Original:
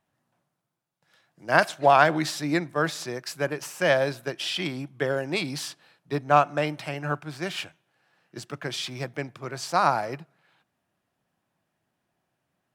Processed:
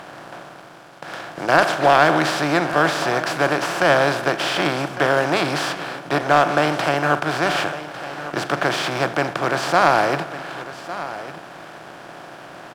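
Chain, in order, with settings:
compressor on every frequency bin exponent 0.4
high-shelf EQ 6,400 Hz −5 dB
leveller curve on the samples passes 1
on a send: single-tap delay 1,154 ms −14 dB
on the sum: level −2.5 dB

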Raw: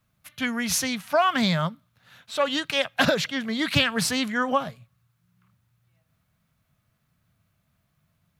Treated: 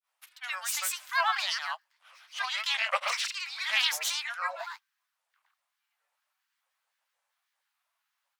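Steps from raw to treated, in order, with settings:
Chebyshev high-pass filter 720 Hz, order 8
granular cloud 160 ms, grains 20 per second, pitch spread up and down by 7 semitones

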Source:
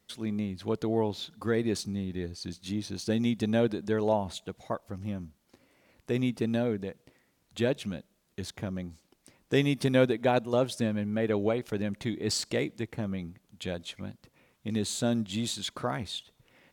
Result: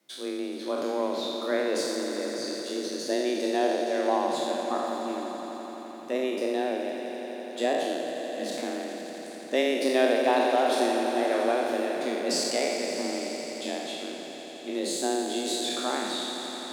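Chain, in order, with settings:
peak hold with a decay on every bin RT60 1.36 s
echo that builds up and dies away 85 ms, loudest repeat 5, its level −13.5 dB
frequency shifter +130 Hz
level −2 dB

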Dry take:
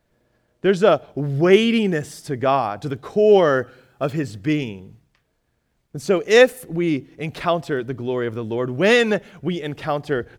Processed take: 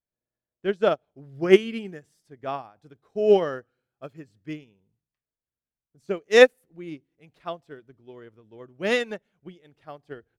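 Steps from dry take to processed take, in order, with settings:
pitch vibrato 0.46 Hz 29 cents
expander for the loud parts 2.5 to 1, over −27 dBFS

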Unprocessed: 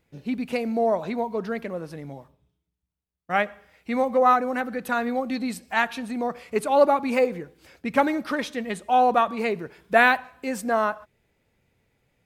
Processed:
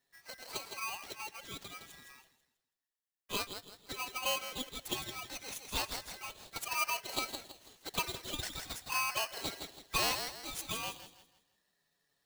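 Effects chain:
guitar amp tone stack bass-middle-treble 10-0-10
flanger swept by the level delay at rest 7.3 ms, full sweep at −28 dBFS
on a send: delay with a high-pass on its return 163 ms, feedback 34%, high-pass 1,800 Hz, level −5 dB
on the sum: ring modulator with a square carrier 1,800 Hz

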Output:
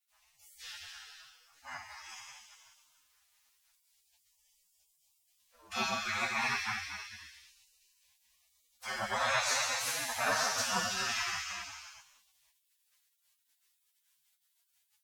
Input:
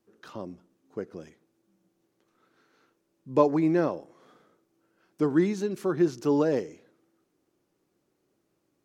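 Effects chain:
reverb whose tail is shaped and stops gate 490 ms falling, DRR −6 dB
gate on every frequency bin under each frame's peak −30 dB weak
phase-vocoder stretch with locked phases 1.7×
level +8.5 dB

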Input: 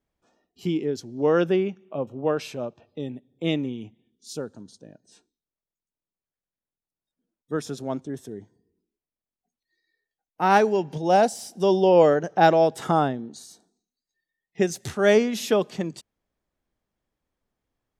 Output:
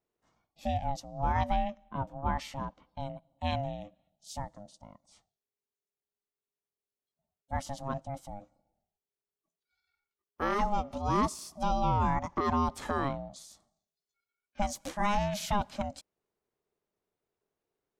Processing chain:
brickwall limiter −13.5 dBFS, peak gain reduction 10 dB
ring modulation 410 Hz
level −3 dB

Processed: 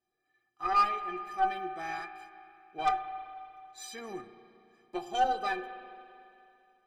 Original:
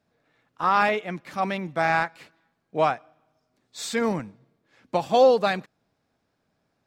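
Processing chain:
stiff-string resonator 360 Hz, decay 0.21 s, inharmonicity 0.03
harmonic generator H 6 −18 dB, 8 −28 dB, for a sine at −18.5 dBFS
spring reverb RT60 2.7 s, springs 34/54 ms, chirp 70 ms, DRR 10 dB
level +3.5 dB

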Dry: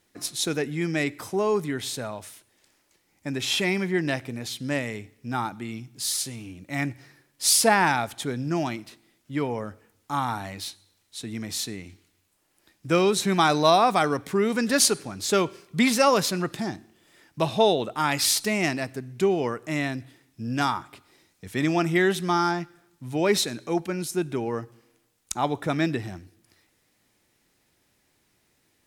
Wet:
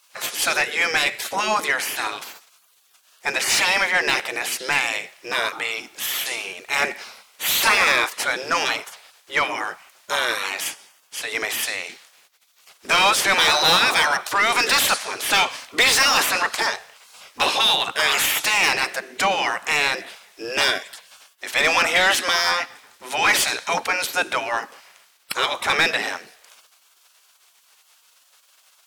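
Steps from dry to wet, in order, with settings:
gate on every frequency bin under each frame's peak −15 dB weak
mid-hump overdrive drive 28 dB, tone 4,600 Hz, clips at −6 dBFS

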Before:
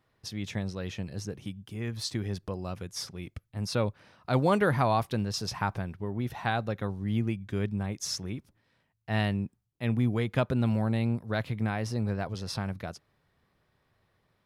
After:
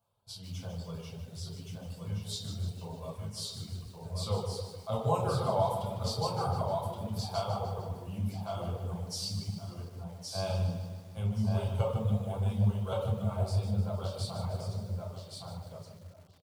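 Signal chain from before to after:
high-shelf EQ 2,300 Hz −4 dB
repeating echo 987 ms, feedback 19%, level −4 dB
convolution reverb RT60 1.3 s, pre-delay 5 ms, DRR −4.5 dB
reverb reduction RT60 1.2 s
speed change −12%
high-pass filter 140 Hz 6 dB per octave
high-shelf EQ 7,500 Hz +11.5 dB
phaser with its sweep stopped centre 770 Hz, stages 4
hum removal 181.1 Hz, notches 35
feedback echo at a low word length 151 ms, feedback 55%, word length 8 bits, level −9 dB
level −6 dB

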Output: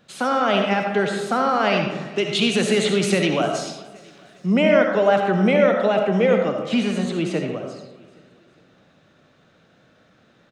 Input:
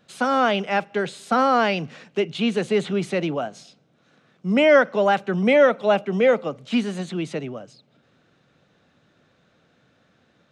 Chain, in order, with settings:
0:02.18–0:04.46: high-shelf EQ 2,500 Hz +11 dB
brickwall limiter −14.5 dBFS, peak gain reduction 9 dB
repeating echo 408 ms, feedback 47%, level −22.5 dB
convolution reverb RT60 0.95 s, pre-delay 30 ms, DRR 3 dB
level +3 dB

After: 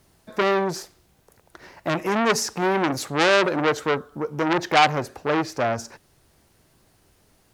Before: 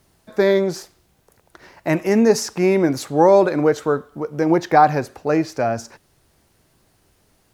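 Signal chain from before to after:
saturating transformer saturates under 2,700 Hz

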